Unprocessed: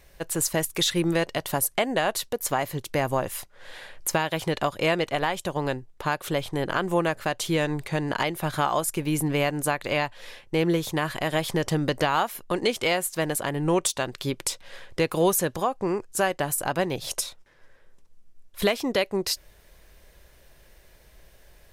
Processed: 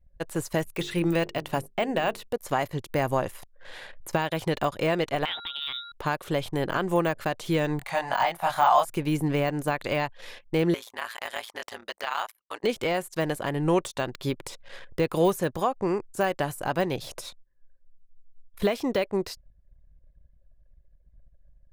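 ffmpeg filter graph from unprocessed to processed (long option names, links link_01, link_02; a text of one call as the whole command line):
ffmpeg -i in.wav -filter_complex "[0:a]asettb=1/sr,asplit=3[link_01][link_02][link_03];[link_01]atrim=end=0.634[link_04];[link_02]atrim=start=0.63:end=2.33,asetpts=PTS-STARTPTS,afade=type=in:duration=0.004:curve=qsin,afade=type=out:start_time=1.696:duration=0.004:curve=qsin,equalizer=frequency=2600:width_type=o:width=0.33:gain=6,bandreject=frequency=50:width_type=h:width=6,bandreject=frequency=100:width_type=h:width=6,bandreject=frequency=150:width_type=h:width=6,bandreject=frequency=200:width_type=h:width=6,bandreject=frequency=250:width_type=h:width=6,bandreject=frequency=300:width_type=h:width=6,bandreject=frequency=350:width_type=h:width=6,bandreject=frequency=400:width_type=h:width=6,bandreject=frequency=450:width_type=h:width=6,deesser=0.5[link_05];[link_03]atrim=start=2.326[link_06];[link_04][link_05]acrossfade=duration=0.004:curve1=hsin:curve2=qsin[link_07];[link_07][link_06]acrossfade=duration=0.004:curve1=qsin:curve2=hsin,asettb=1/sr,asplit=3[link_08][link_09][link_10];[link_08]atrim=end=5.254[link_11];[link_09]atrim=start=5.25:end=5.92,asetpts=PTS-STARTPTS,afade=type=in:duration=0.004:curve=qsin,afade=type=out:start_time=0.666:duration=0.004:curve=qsin,lowpass=frequency=3300:width_type=q:width=0.5098,lowpass=frequency=3300:width_type=q:width=0.6013,lowpass=frequency=3300:width_type=q:width=0.9,lowpass=frequency=3300:width_type=q:width=2.563,afreqshift=-3900,aeval=exprs='val(0)+0.00794*sin(2*PI*1400*n/s)':channel_layout=same[link_12];[link_10]atrim=start=5.916[link_13];[link_11][link_12]acrossfade=duration=0.004:curve1=hsin:curve2=qsin[link_14];[link_14][link_13]acrossfade=duration=0.004:curve1=qsin:curve2=hsin,asettb=1/sr,asplit=3[link_15][link_16][link_17];[link_15]atrim=end=7.794[link_18];[link_16]atrim=start=7.79:end=8.85,asetpts=PTS-STARTPTS,afade=type=in:duration=0.004:curve=qsin,afade=type=out:start_time=1.056:duration=0.004:curve=qsin,lowshelf=frequency=530:width_type=q:width=3:gain=-11,asplit=2[link_19][link_20];[link_20]adelay=23,volume=-2dB[link_21];[link_19][link_21]amix=inputs=2:normalize=0,atrim=end_sample=46746[link_22];[link_17]atrim=start=8.846[link_23];[link_18][link_22]acrossfade=duration=0.004:curve1=hsin:curve2=qsin[link_24];[link_24][link_23]acrossfade=duration=0.004:curve1=qsin:curve2=hsin,asettb=1/sr,asplit=3[link_25][link_26][link_27];[link_25]atrim=end=10.744[link_28];[link_26]atrim=start=10.74:end=12.64,asetpts=PTS-STARTPTS,afade=type=in:duration=0.004:curve=qsin,afade=type=out:start_time=1.896:duration=0.004:curve=qsin,highpass=930,aeval=exprs='val(0)*sin(2*PI*57*n/s)':channel_layout=same[link_29];[link_27]atrim=start=12.636[link_30];[link_28][link_29]acrossfade=duration=0.004:curve1=hsin:curve2=qsin[link_31];[link_31][link_30]acrossfade=duration=0.004:curve1=qsin:curve2=hsin,deesser=0.85,anlmdn=0.0251" out.wav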